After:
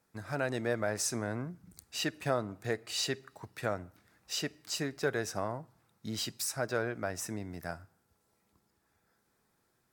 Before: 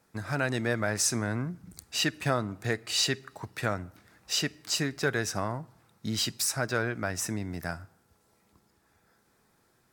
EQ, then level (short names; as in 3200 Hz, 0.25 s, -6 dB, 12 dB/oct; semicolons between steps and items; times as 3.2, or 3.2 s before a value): high shelf 12000 Hz +4 dB; dynamic EQ 550 Hz, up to +7 dB, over -42 dBFS, Q 0.87; -7.5 dB